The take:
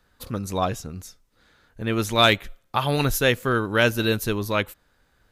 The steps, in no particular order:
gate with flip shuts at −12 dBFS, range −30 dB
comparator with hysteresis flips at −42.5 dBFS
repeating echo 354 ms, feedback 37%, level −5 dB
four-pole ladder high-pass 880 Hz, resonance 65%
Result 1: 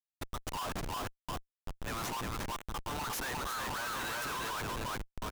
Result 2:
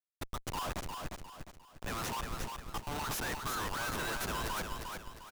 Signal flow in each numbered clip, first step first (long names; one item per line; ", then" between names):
four-pole ladder high-pass, then gate with flip, then repeating echo, then comparator with hysteresis
four-pole ladder high-pass, then gate with flip, then comparator with hysteresis, then repeating echo